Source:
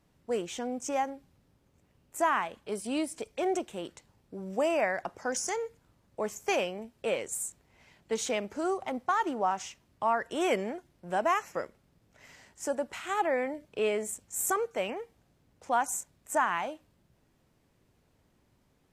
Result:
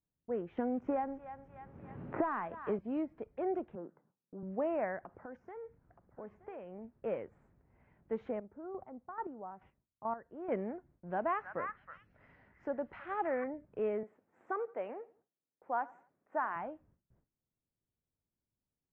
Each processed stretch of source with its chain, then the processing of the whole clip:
0.57–2.79 s: waveshaping leveller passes 1 + thinning echo 300 ms, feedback 28%, high-pass 1 kHz, level -15.5 dB + three bands compressed up and down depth 100%
3.75–4.43 s: partial rectifier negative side -3 dB + Chebyshev band-pass 160–1500 Hz, order 3
4.98–6.99 s: compression 4:1, threshold -38 dBFS + delay 924 ms -15 dB
8.31–10.52 s: low-pass 1.1 kHz 6 dB/octave + square tremolo 2.3 Hz, depth 65%, duty 20%
11.07–13.44 s: peaking EQ 5 kHz +9.5 dB 1.7 oct + repeats whose band climbs or falls 321 ms, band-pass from 1.6 kHz, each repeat 1.4 oct, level -2 dB
14.03–16.56 s: high-pass 340 Hz + feedback delay 86 ms, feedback 37%, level -21 dB + tape noise reduction on one side only decoder only
whole clip: gate with hold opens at -55 dBFS; low-pass 1.8 kHz 24 dB/octave; bass shelf 370 Hz +7.5 dB; trim -8.5 dB

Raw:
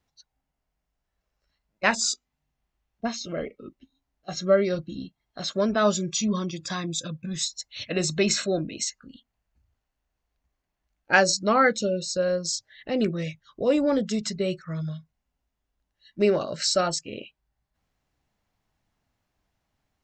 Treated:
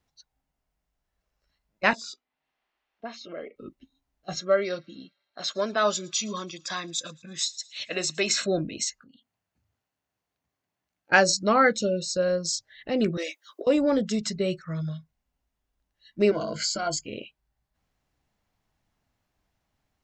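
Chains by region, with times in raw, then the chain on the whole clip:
1.93–3.56 s: three-band isolator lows -21 dB, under 260 Hz, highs -21 dB, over 4.1 kHz + compression 1.5:1, threshold -42 dBFS + tape noise reduction on one side only encoder only
4.40–8.41 s: frequency weighting A + feedback echo behind a high-pass 111 ms, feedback 61%, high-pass 2.5 kHz, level -23 dB + tape noise reduction on one side only decoder only
9.02–11.12 s: compression 3:1, threshold -55 dBFS + high-pass 93 Hz 24 dB/octave
13.17–13.67 s: steep high-pass 280 Hz 96 dB/octave + treble shelf 5.6 kHz +10.5 dB + compressor with a negative ratio -32 dBFS, ratio -0.5
16.31–17.06 s: compression 2.5:1, threshold -28 dBFS + rippled EQ curve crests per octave 1.8, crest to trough 17 dB
whole clip: none

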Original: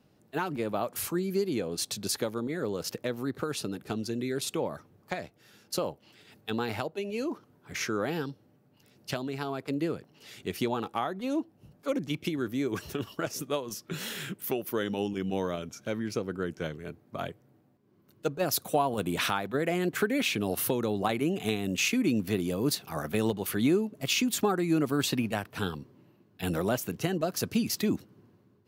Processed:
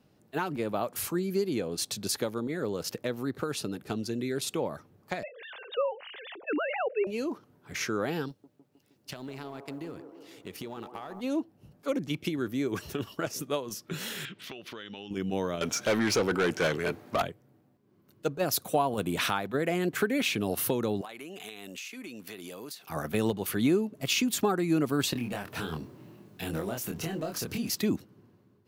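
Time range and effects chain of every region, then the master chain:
5.23–7.07 s: formants replaced by sine waves + level flattener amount 50%
8.28–11.21 s: companding laws mixed up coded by A + compression 10:1, threshold -35 dBFS + feedback echo behind a band-pass 156 ms, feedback 68%, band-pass 580 Hz, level -7 dB
14.25–15.11 s: FFT filter 550 Hz 0 dB, 3.7 kHz +14 dB, 14 kHz -21 dB + compression, threshold -39 dBFS
15.61–17.22 s: peaking EQ 100 Hz +6.5 dB 0.31 oct + overdrive pedal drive 25 dB, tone 7.3 kHz, clips at -17 dBFS
21.01–22.90 s: high-pass 960 Hz 6 dB/octave + compression 8:1, threshold -38 dBFS
25.13–27.70 s: companding laws mixed up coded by mu + compression 4:1, threshold -32 dBFS + doubling 25 ms -3 dB
whole clip: none

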